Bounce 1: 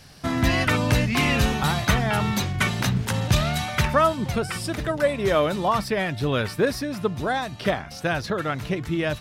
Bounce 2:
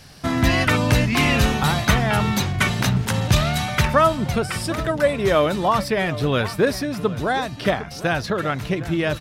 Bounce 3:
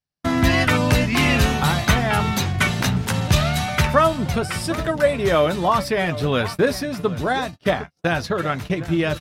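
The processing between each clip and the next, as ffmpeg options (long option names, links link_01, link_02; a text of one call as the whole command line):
ffmpeg -i in.wav -filter_complex "[0:a]asplit=2[link_01][link_02];[link_02]adelay=758,volume=-15dB,highshelf=frequency=4000:gain=-17.1[link_03];[link_01][link_03]amix=inputs=2:normalize=0,volume=3dB" out.wav
ffmpeg -i in.wav -filter_complex "[0:a]agate=range=-46dB:threshold=-28dB:ratio=16:detection=peak,asplit=2[link_01][link_02];[link_02]adelay=12,volume=-10.5dB[link_03];[link_01][link_03]amix=inputs=2:normalize=0" out.wav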